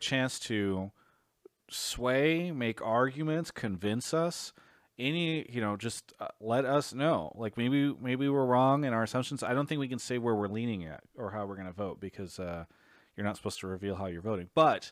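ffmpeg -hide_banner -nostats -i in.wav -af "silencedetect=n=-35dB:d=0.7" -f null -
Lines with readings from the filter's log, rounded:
silence_start: 0.86
silence_end: 1.73 | silence_duration: 0.87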